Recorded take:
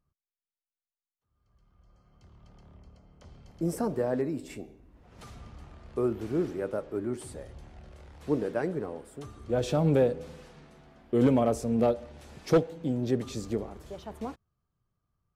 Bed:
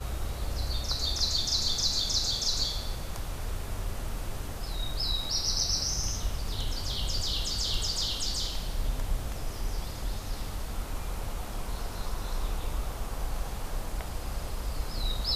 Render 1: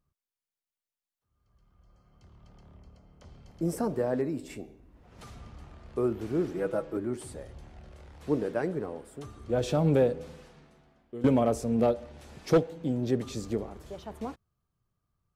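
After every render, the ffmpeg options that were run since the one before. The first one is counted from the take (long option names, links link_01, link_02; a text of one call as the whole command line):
ffmpeg -i in.wav -filter_complex "[0:a]asettb=1/sr,asplit=3[link_01][link_02][link_03];[link_01]atrim=end=6.544[link_04];[link_02]atrim=start=6.54:end=6.97,asetpts=PTS-STARTPTS,afade=type=in:duration=0.004:curve=qsin,afade=type=out:start_time=0.426:duration=0.004:curve=qsin,aecho=1:1:6.1:0.88,atrim=end_sample=18963[link_05];[link_03]atrim=start=6.966[link_06];[link_04][link_05]acrossfade=duration=0.004:curve1=hsin:curve2=qsin[link_07];[link_07][link_06]acrossfade=duration=0.004:curve1=qsin:curve2=hsin,asplit=2[link_08][link_09];[link_08]atrim=end=11.24,asetpts=PTS-STARTPTS,afade=type=out:start_time=10.21:duration=1.03:silence=0.133352[link_10];[link_09]atrim=start=11.24,asetpts=PTS-STARTPTS,afade=type=in:duration=0.004:curve=hsin:silence=0.133352[link_11];[link_10][link_11]concat=n=2:v=0:a=1" out.wav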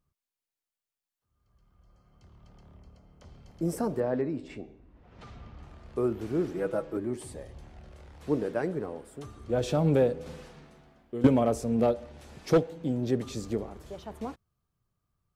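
ffmpeg -i in.wav -filter_complex "[0:a]asettb=1/sr,asplit=3[link_01][link_02][link_03];[link_01]atrim=end=4.004[link_04];[link_02]atrim=start=4:end=5.63,asetpts=PTS-STARTPTS,afade=type=in:duration=0.004:curve=qsin,afade=type=out:start_time=1.626:duration=0.004:curve=qsin,lowpass=4000[link_05];[link_03]atrim=start=5.626[link_06];[link_04][link_05]acrossfade=duration=0.004:curve1=hsin:curve2=qsin[link_07];[link_07][link_06]acrossfade=duration=0.004:curve1=qsin:curve2=hsin,asettb=1/sr,asplit=3[link_08][link_09][link_10];[link_08]atrim=end=7.004[link_11];[link_09]atrim=start=7:end=7.55,asetpts=PTS-STARTPTS,afade=type=in:duration=0.004:curve=qsin,afade=type=out:start_time=0.546:duration=0.004:curve=qsin,asuperstop=centerf=1400:order=4:qfactor=7.1[link_12];[link_10]atrim=start=7.546[link_13];[link_11][link_12]acrossfade=duration=0.004:curve1=hsin:curve2=qsin[link_14];[link_14][link_13]acrossfade=duration=0.004:curve1=qsin:curve2=hsin,asplit=3[link_15][link_16][link_17];[link_15]atrim=end=10.262[link_18];[link_16]atrim=start=10.258:end=11.272,asetpts=PTS-STARTPTS,volume=4.5dB[link_19];[link_17]atrim=start=11.268[link_20];[link_18][link_19]acrossfade=duration=0.004:curve1=hsin:curve2=hsin[link_21];[link_21][link_20]acrossfade=duration=0.004:curve1=hsin:curve2=hsin" out.wav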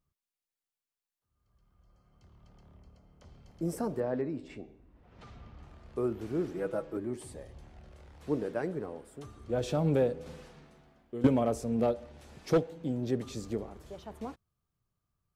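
ffmpeg -i in.wav -af "volume=-3.5dB" out.wav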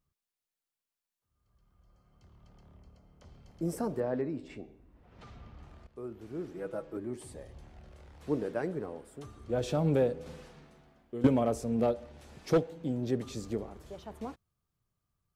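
ffmpeg -i in.wav -filter_complex "[0:a]asplit=2[link_01][link_02];[link_01]atrim=end=5.87,asetpts=PTS-STARTPTS,afade=type=out:start_time=5.866:duration=0.004:curve=hsin:silence=0.223872[link_03];[link_02]atrim=start=5.87,asetpts=PTS-STARTPTS,afade=type=in:duration=1.68:silence=0.223872[link_04];[link_03][link_04]concat=n=2:v=0:a=1" out.wav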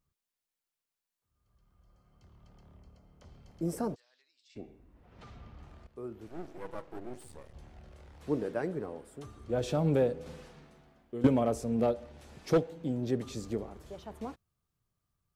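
ffmpeg -i in.wav -filter_complex "[0:a]asplit=3[link_01][link_02][link_03];[link_01]afade=type=out:start_time=3.94:duration=0.02[link_04];[link_02]asuperpass=centerf=5000:order=4:qfactor=1.5,afade=type=in:start_time=3.94:duration=0.02,afade=type=out:start_time=4.55:duration=0.02[link_05];[link_03]afade=type=in:start_time=4.55:duration=0.02[link_06];[link_04][link_05][link_06]amix=inputs=3:normalize=0,asettb=1/sr,asplit=3[link_07][link_08][link_09];[link_07]atrim=end=6.284[link_10];[link_08]atrim=start=6.28:end=7.55,asetpts=PTS-STARTPTS,afade=type=in:duration=0.004:curve=qsin,afade=type=out:start_time=1.266:duration=0.004:curve=qsin,aeval=exprs='max(val(0),0)':channel_layout=same[link_11];[link_09]atrim=start=7.546[link_12];[link_10][link_11]acrossfade=duration=0.004:curve1=hsin:curve2=qsin[link_13];[link_13][link_12]acrossfade=duration=0.004:curve1=qsin:curve2=hsin" out.wav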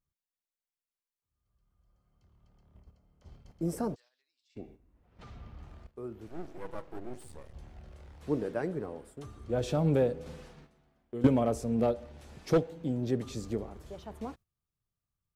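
ffmpeg -i in.wav -af "agate=range=-9dB:threshold=-54dB:ratio=16:detection=peak,lowshelf=frequency=110:gain=4.5" out.wav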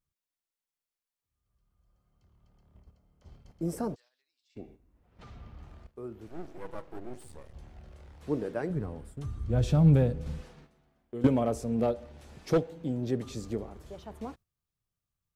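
ffmpeg -i in.wav -filter_complex "[0:a]asplit=3[link_01][link_02][link_03];[link_01]afade=type=out:start_time=8.69:duration=0.02[link_04];[link_02]asubboost=boost=5:cutoff=170,afade=type=in:start_time=8.69:duration=0.02,afade=type=out:start_time=10.4:duration=0.02[link_05];[link_03]afade=type=in:start_time=10.4:duration=0.02[link_06];[link_04][link_05][link_06]amix=inputs=3:normalize=0" out.wav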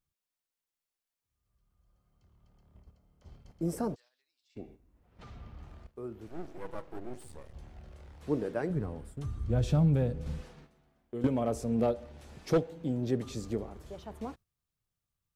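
ffmpeg -i in.wav -af "alimiter=limit=-18dB:level=0:latency=1:release=369" out.wav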